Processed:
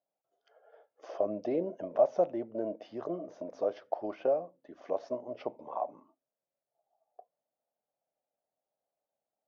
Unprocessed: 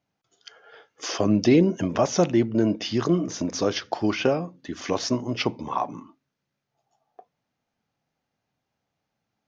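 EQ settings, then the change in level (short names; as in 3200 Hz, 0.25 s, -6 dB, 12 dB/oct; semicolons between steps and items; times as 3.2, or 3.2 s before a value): band-pass 610 Hz, Q 4.6; 0.0 dB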